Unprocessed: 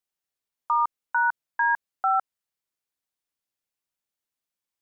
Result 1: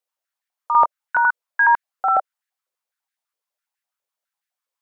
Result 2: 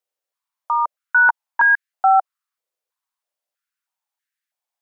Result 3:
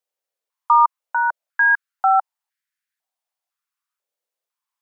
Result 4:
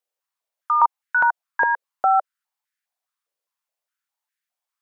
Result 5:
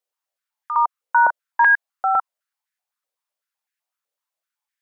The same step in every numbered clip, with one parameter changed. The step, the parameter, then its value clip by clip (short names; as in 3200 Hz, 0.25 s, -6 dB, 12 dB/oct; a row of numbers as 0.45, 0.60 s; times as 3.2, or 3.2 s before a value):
stepped high-pass, rate: 12, 3.1, 2, 4.9, 7.9 Hz